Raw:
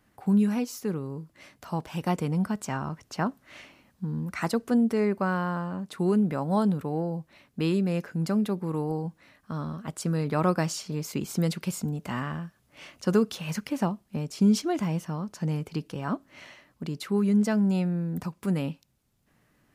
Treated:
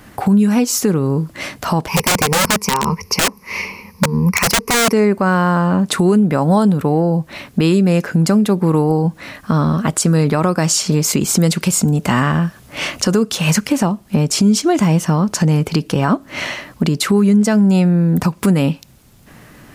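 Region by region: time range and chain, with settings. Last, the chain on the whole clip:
0:01.88–0:04.93: EQ curve with evenly spaced ripples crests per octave 0.84, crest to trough 18 dB + wrap-around overflow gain 20.5 dB + expander for the loud parts, over −35 dBFS
whole clip: dynamic equaliser 7,700 Hz, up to +6 dB, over −55 dBFS, Q 1.4; downward compressor 4 to 1, threshold −37 dBFS; boost into a limiter +28.5 dB; level −4 dB

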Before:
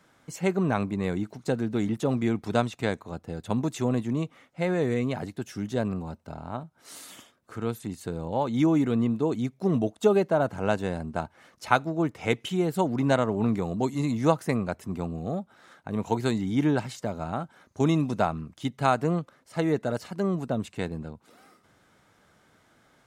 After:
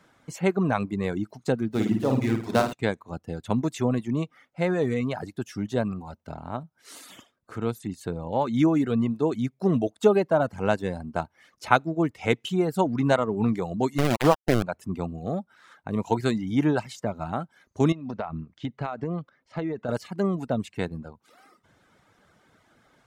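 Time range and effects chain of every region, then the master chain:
0:01.71–0:02.73: gap after every zero crossing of 0.092 ms + mains-hum notches 50/100/150/200/250/300/350/400/450 Hz + flutter between parallel walls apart 9.2 metres, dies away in 0.91 s
0:13.98–0:14.63: low-pass filter 2,000 Hz 24 dB per octave + centre clipping without the shift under −23.5 dBFS + envelope flattener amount 50%
0:17.92–0:19.89: downward compressor 16 to 1, threshold −26 dBFS + high-frequency loss of the air 160 metres
whole clip: reverb reduction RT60 0.74 s; high-shelf EQ 6,100 Hz −5 dB; level +2.5 dB

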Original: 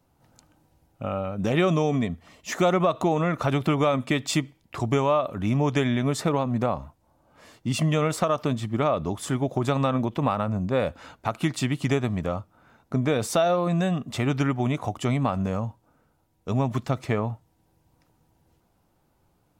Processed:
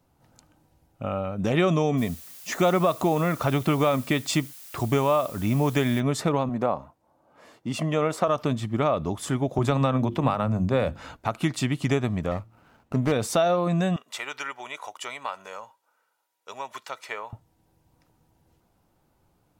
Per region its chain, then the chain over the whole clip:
0:01.97–0:05.99: noise gate −51 dBFS, range −11 dB + background noise blue −45 dBFS
0:06.49–0:08.28: high-pass filter 500 Hz 6 dB per octave + tilt shelving filter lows +5.5 dB, about 1,400 Hz
0:09.58–0:11.17: low-shelf EQ 74 Hz +10 dB + mains-hum notches 50/100/150/200/250/300/350 Hz + multiband upward and downward compressor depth 40%
0:12.31–0:13.12: high-shelf EQ 10,000 Hz +9 dB + hum removal 113.6 Hz, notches 3 + windowed peak hold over 9 samples
0:13.96–0:17.33: high-pass filter 1,000 Hz + comb filter 2.1 ms, depth 35%
whole clip: no processing

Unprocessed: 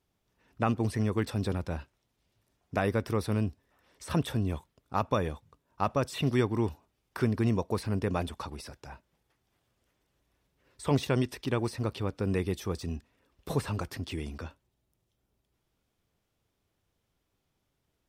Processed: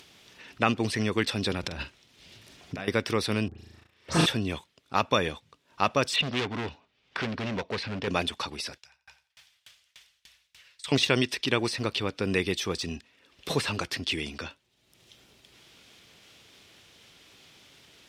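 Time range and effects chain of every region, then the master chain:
0:01.63–0:02.88: low-shelf EQ 240 Hz +7 dB + compressor whose output falls as the input rises −36 dBFS + double-tracking delay 46 ms −11 dB
0:03.48–0:04.26: all-pass dispersion highs, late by 110 ms, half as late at 2,000 Hz + flutter between parallel walls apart 6.3 metres, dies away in 1.5 s + noise gate −53 dBFS, range −18 dB
0:06.16–0:08.08: low-pass filter 3,700 Hz + gain into a clipping stage and back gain 29.5 dB + notch filter 340 Hz, Q 6.8
0:08.78–0:10.92: guitar amp tone stack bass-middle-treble 10-0-10 + repeating echo 87 ms, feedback 50%, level −8 dB + tremolo with a ramp in dB decaying 3.4 Hz, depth 39 dB
whole clip: high-shelf EQ 11,000 Hz −6.5 dB; upward compression, threshold −46 dBFS; meter weighting curve D; level +3.5 dB

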